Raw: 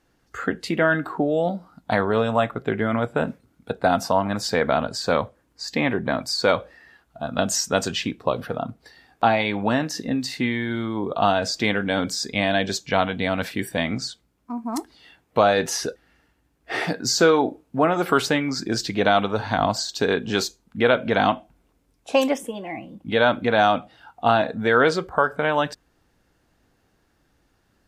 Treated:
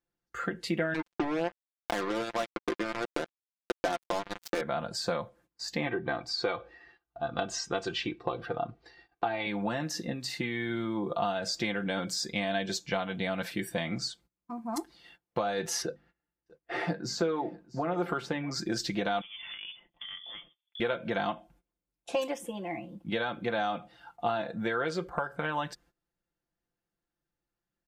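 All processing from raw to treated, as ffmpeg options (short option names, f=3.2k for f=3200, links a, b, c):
-filter_complex "[0:a]asettb=1/sr,asplit=3[a][b][c];[a]atrim=end=0.944[d];[b]atrim=start=0.94:end=4.61,asetpts=PTS-STARTPTS,afade=t=in:d=0.004:c=qsin,afade=t=out:st=3.666:d=0.004:c=qsin,lowshelf=f=210:t=q:w=3:g=-13.5,acrusher=bits=2:mix=0:aa=0.5[e];[c]atrim=start=4.606[f];[d][e]acrossfade=d=0.004:c1=hsin:c2=qsin[g];[g][f]acrossfade=d=0.004:c1=qsin:c2=hsin,asettb=1/sr,asplit=3[h][i][j];[h]atrim=end=5.864[k];[i]atrim=start=5.86:end=9.47,asetpts=PTS-STARTPTS,afade=t=in:d=0.004:c=qsin,afade=t=out:st=3.606:d=0.004:c=qsin,lowpass=4.1k,aecho=1:1:2.6:0.6,atrim=end_sample=159201[l];[j]atrim=start=9.466[m];[k][l]acrossfade=d=0.004:c1=hsin:c2=qsin[n];[n][m]acrossfade=d=0.004:c1=qsin:c2=hsin,asettb=1/sr,asplit=3[o][p][q];[o]atrim=end=15.824[r];[p]atrim=start=15.82:end=18.51,asetpts=PTS-STARTPTS,afade=t=in:d=0.004:c=qsin,afade=t=out:st=2.686:d=0.004:c=qsin,lowpass=f=1.9k:p=1,bandreject=f=50:t=h:w=6,bandreject=f=100:t=h:w=6,bandreject=f=150:t=h:w=6,bandreject=f=200:t=h:w=6,bandreject=f=250:t=h:w=6,aecho=1:1:641:0.075,atrim=end_sample=118629[s];[q]atrim=start=18.506[t];[r][s]acrossfade=d=0.004:c1=hsin:c2=qsin[u];[u][t]acrossfade=d=0.004:c1=qsin:c2=hsin,asettb=1/sr,asplit=3[v][w][x];[v]atrim=end=19.214[y];[w]atrim=start=19.21:end=20.8,asetpts=PTS-STARTPTS,afade=t=in:d=0.004:c=qsin,afade=t=out:st=1.586:d=0.004:c=qsin,acompressor=threshold=-34dB:ratio=6:attack=3.2:release=140:knee=1:detection=peak,lowpass=f=3.1k:t=q:w=0.5098,lowpass=f=3.1k:t=q:w=0.6013,lowpass=f=3.1k:t=q:w=0.9,lowpass=f=3.1k:t=q:w=2.563,afreqshift=-3600[z];[x]atrim=start=20.796[aa];[y][z]acrossfade=d=0.004:c1=hsin:c2=qsin[ab];[ab][aa]acrossfade=d=0.004:c1=qsin:c2=hsin,agate=range=-19dB:threshold=-51dB:ratio=16:detection=peak,acompressor=threshold=-22dB:ratio=6,aecho=1:1:5.8:0.65,volume=-6.5dB"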